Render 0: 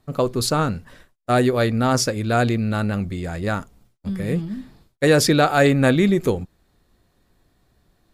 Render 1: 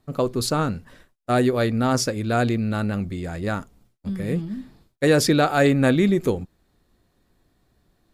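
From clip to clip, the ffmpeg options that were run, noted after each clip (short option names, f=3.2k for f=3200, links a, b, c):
-af "equalizer=f=280:t=o:w=1.2:g=2.5,volume=-3dB"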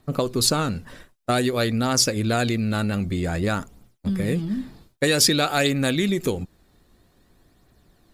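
-filter_complex "[0:a]acrossover=split=2300[a][b];[a]acompressor=threshold=-26dB:ratio=6[c];[b]aphaser=in_gain=1:out_gain=1:delay=2.3:decay=0.51:speed=0.52:type=triangular[d];[c][d]amix=inputs=2:normalize=0,volume=6dB"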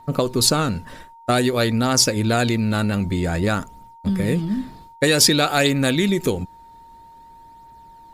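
-af "aeval=exprs='val(0)+0.00501*sin(2*PI*920*n/s)':c=same,volume=3dB"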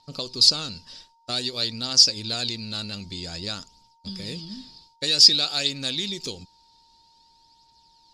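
-af "aexciter=amount=2.4:drive=9.5:freq=2.7k,lowpass=f=4.9k:t=q:w=6.7,volume=-16dB"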